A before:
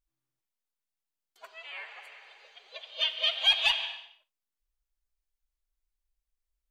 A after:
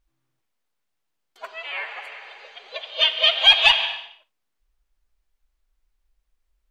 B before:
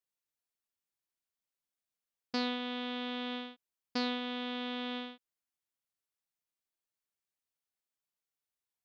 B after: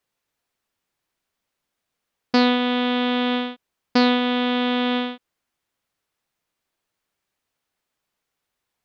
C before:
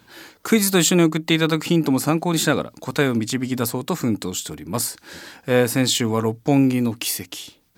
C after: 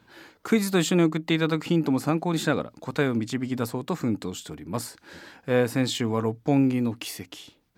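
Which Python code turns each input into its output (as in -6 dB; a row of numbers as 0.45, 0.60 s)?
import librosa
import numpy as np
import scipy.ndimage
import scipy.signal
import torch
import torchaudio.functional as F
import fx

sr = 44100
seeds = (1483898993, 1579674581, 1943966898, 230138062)

y = fx.high_shelf(x, sr, hz=4600.0, db=-11.0)
y = y * 10.0 ** (-26 / 20.0) / np.sqrt(np.mean(np.square(y)))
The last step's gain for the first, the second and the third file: +13.5, +17.5, -4.5 dB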